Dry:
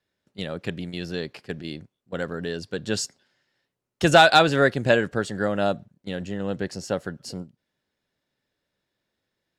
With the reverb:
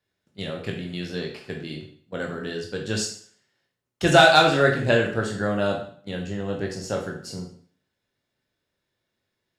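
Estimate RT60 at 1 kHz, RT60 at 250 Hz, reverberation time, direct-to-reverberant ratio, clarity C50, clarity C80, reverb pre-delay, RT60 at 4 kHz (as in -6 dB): 0.50 s, 0.50 s, 0.50 s, 0.0 dB, 6.5 dB, 10.5 dB, 14 ms, 0.50 s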